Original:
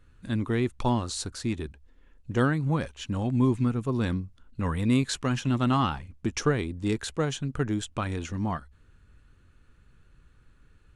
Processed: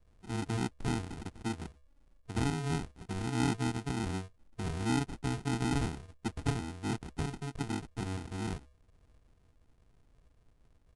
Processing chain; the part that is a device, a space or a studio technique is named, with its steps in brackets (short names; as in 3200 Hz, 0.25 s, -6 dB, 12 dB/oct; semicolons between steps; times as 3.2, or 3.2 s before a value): crushed at another speed (playback speed 2×; sample-and-hold 39×; playback speed 0.5×); gain -7.5 dB